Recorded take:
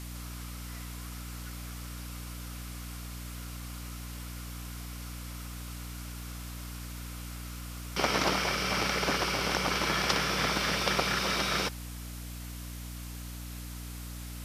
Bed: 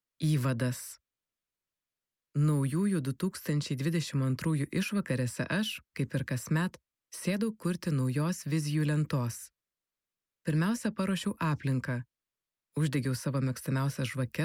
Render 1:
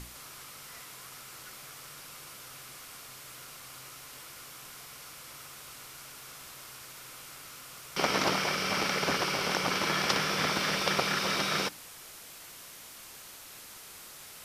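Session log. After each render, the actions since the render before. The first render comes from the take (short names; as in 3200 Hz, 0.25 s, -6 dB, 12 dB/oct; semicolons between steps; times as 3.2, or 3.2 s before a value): notches 60/120/180/240/300 Hz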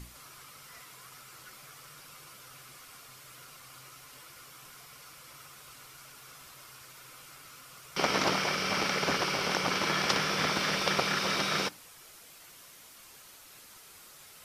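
denoiser 6 dB, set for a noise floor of -49 dBFS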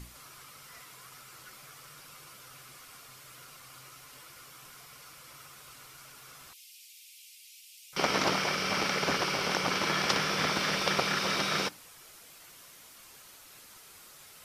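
6.53–7.93 steep high-pass 2400 Hz 48 dB/oct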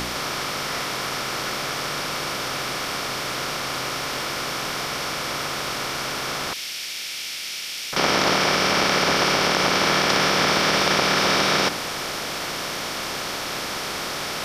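per-bin compression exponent 0.4; in parallel at +0.5 dB: limiter -17.5 dBFS, peak gain reduction 9.5 dB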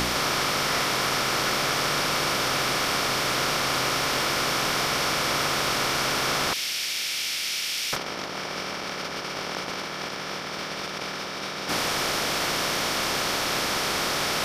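negative-ratio compressor -25 dBFS, ratio -0.5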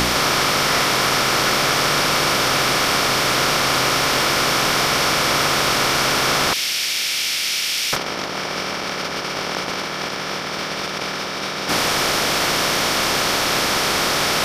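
gain +7 dB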